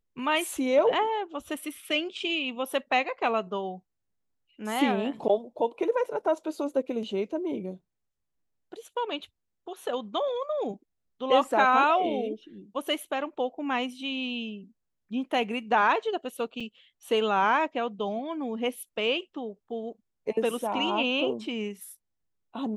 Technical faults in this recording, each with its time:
16.60–16.61 s: dropout 5.6 ms

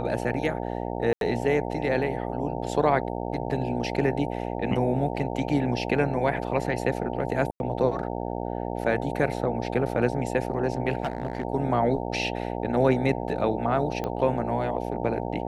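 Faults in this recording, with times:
buzz 60 Hz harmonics 15 -31 dBFS
1.13–1.21 s: dropout 82 ms
7.51–7.60 s: dropout 91 ms
11.03–11.45 s: clipped -23 dBFS
14.04 s: pop -17 dBFS

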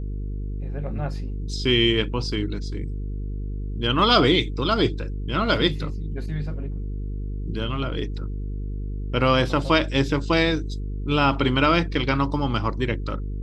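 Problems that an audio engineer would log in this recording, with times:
buzz 50 Hz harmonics 9 -29 dBFS

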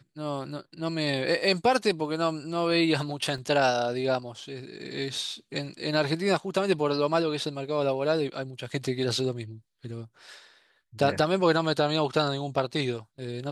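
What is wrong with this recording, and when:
3.38 s: dropout 2.6 ms

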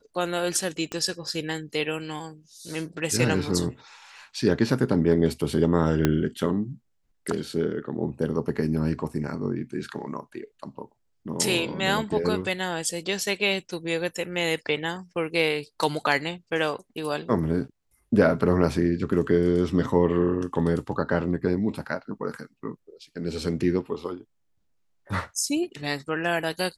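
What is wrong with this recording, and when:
0.92 s: pop -17 dBFS
6.05 s: pop -7 dBFS

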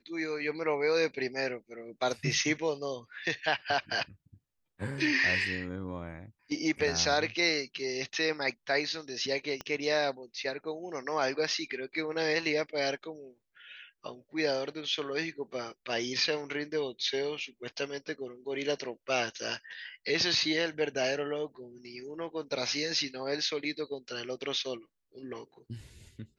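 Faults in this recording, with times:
9.61 s: pop -22 dBFS

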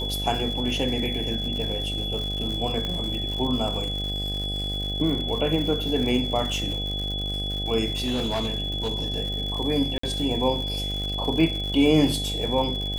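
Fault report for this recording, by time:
buzz 50 Hz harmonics 16 -31 dBFS
crackle 160 per s -31 dBFS
whine 3.4 kHz -29 dBFS
2.85 s: pop -17 dBFS
7.90–9.18 s: clipped -21.5 dBFS
9.98–10.03 s: dropout 54 ms

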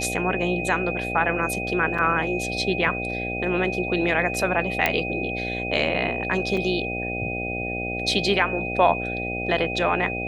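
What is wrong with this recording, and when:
buzz 60 Hz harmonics 13 -31 dBFS
whine 2.5 kHz -29 dBFS
1.98–1.99 s: dropout 5.3 ms
4.86 s: pop -6 dBFS
6.57 s: dropout 3.9 ms

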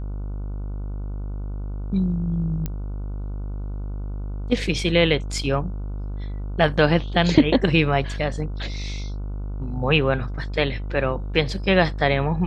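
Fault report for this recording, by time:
buzz 50 Hz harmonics 30 -29 dBFS
2.66 s: pop -14 dBFS

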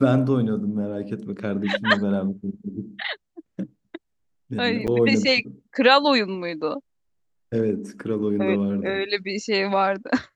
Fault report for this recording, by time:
4.87–4.88 s: dropout 8.1 ms

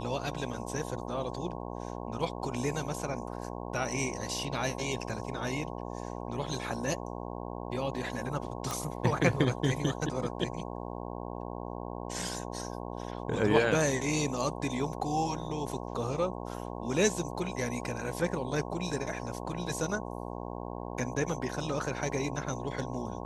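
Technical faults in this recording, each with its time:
buzz 60 Hz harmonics 18 -39 dBFS
8.71 s: pop

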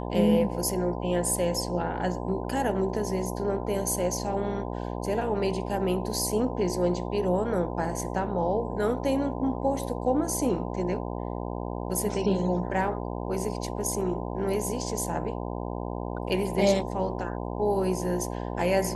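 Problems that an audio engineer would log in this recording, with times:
buzz 60 Hz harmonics 17 -33 dBFS

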